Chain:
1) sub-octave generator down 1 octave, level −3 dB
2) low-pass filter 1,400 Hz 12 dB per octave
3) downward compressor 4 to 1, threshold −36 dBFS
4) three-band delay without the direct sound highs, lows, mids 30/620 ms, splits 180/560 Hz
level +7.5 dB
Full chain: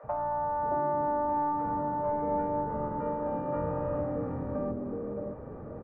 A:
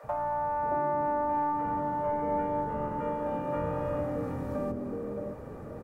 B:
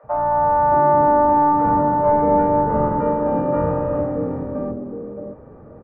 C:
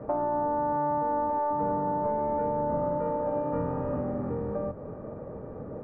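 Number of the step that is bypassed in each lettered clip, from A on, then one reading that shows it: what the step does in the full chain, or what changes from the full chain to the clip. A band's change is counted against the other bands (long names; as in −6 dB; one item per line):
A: 2, 2 kHz band +4.0 dB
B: 3, average gain reduction 9.5 dB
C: 4, echo-to-direct ratio −12.0 dB to none audible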